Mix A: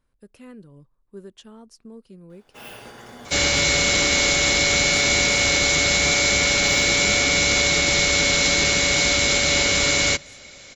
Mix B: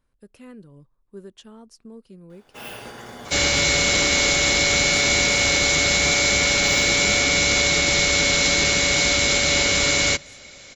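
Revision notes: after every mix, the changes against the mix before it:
first sound +3.5 dB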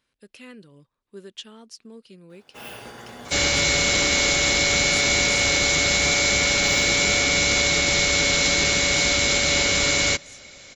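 speech: add meter weighting curve D
reverb: off

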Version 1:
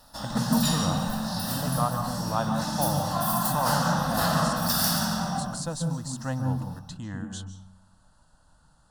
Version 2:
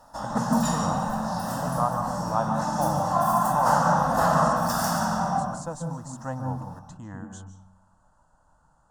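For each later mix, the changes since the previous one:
speech −4.0 dB
master: add drawn EQ curve 230 Hz 0 dB, 950 Hz +8 dB, 4,200 Hz −13 dB, 6,800 Hz +1 dB, 11,000 Hz −10 dB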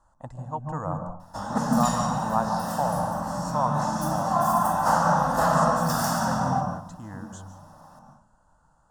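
background: entry +1.20 s

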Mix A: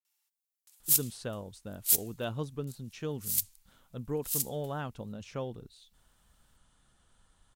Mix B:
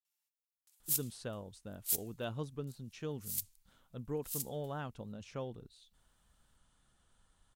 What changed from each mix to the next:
speech −4.5 dB
background −8.5 dB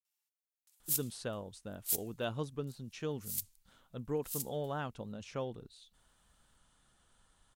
speech +4.0 dB
master: add low-shelf EQ 210 Hz −4.5 dB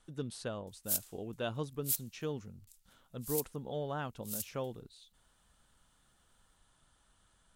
speech: entry −0.80 s

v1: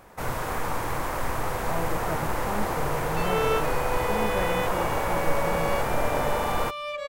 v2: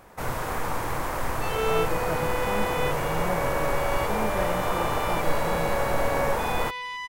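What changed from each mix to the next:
second sound: entry −1.75 s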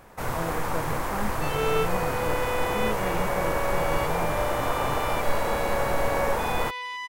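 speech: entry −1.35 s

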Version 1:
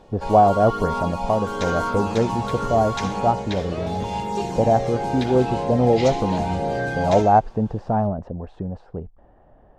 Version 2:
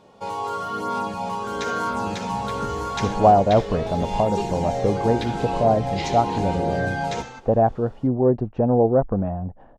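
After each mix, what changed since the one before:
speech: entry +2.90 s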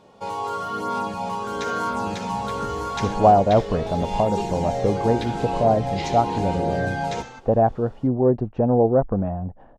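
second sound: send −8.5 dB

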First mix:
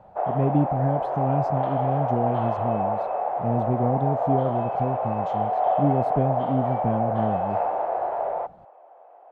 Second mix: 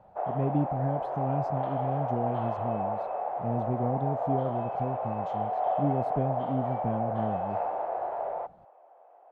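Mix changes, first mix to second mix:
speech −6.0 dB
background −6.0 dB

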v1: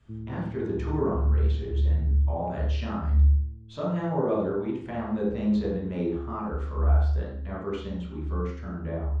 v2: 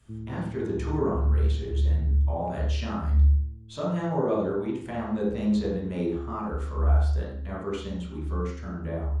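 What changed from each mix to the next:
speech: add high-shelf EQ 6,600 Hz +7 dB
master: remove high-frequency loss of the air 83 metres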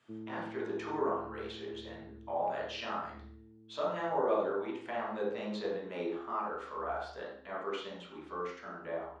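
background +10.0 dB
master: add band-pass filter 540–4,000 Hz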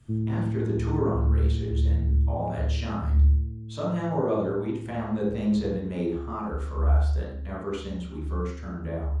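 master: remove band-pass filter 540–4,000 Hz

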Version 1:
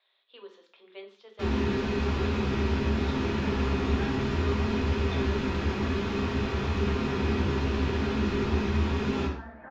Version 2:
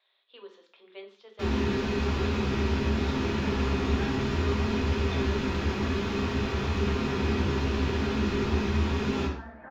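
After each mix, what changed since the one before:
first sound: add high-shelf EQ 5,300 Hz +5.5 dB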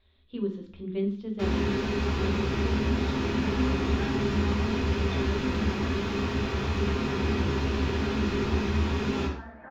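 speech: remove high-pass filter 590 Hz 24 dB per octave

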